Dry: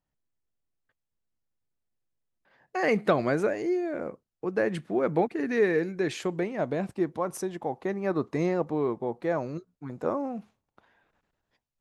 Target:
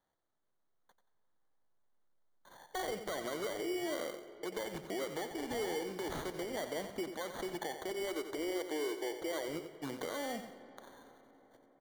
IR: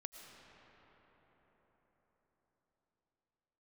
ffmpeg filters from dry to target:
-filter_complex "[0:a]volume=7.5,asoftclip=hard,volume=0.133,asettb=1/sr,asplit=3[s0][s1][s2];[s0]atrim=end=7.914[s3];[s1]atrim=start=7.91:end=9.48,asetpts=PTS-STARTPTS,afade=t=in:d=0.004:c=qsin,afade=t=out:st=1.566:d=0.004:c=qsin,lowshelf=f=260:t=q:w=3:g=-8.5[s4];[s2]atrim=start=9.476[s5];[s3][s4]acrossfade=d=0.004:c1=hsin:c2=qsin[s6];[s6][s5]acrossfade=d=0.004:c1=qsin:c2=hsin,acompressor=threshold=0.0178:ratio=5,acrossover=split=330 6800:gain=0.178 1 0.0891[s7][s8][s9];[s7][s8][s9]amix=inputs=3:normalize=0,acrusher=samples=17:mix=1:aa=0.000001,alimiter=level_in=4.73:limit=0.0631:level=0:latency=1:release=119,volume=0.211,aecho=1:1:90|180|270:0.335|0.0971|0.0282,asplit=2[s10][s11];[1:a]atrim=start_sample=2205[s12];[s11][s12]afir=irnorm=-1:irlink=0,volume=0.708[s13];[s10][s13]amix=inputs=2:normalize=0,volume=1.5"

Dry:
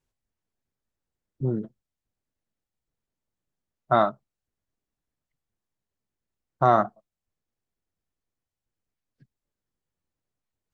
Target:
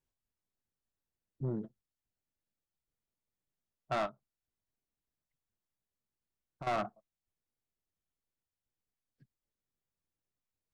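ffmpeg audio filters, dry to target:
-filter_complex "[0:a]asoftclip=type=tanh:threshold=0.0891,asettb=1/sr,asplit=3[s0][s1][s2];[s0]atrim=end=4.064[s3];[s1]atrim=start=4.06:end=6.67,asetpts=PTS-STARTPTS,afade=t=in:d=0.004:c=qsin,afade=t=out:st=2.606:d=0.004:c=qsin,acompressor=threshold=0.0141:ratio=6[s4];[s2]atrim=start=6.666[s5];[s3][s4]acrossfade=d=0.004:c1=hsin:c2=qsin[s6];[s6][s5]acrossfade=d=0.004:c1=qsin:c2=hsin,volume=0.447"

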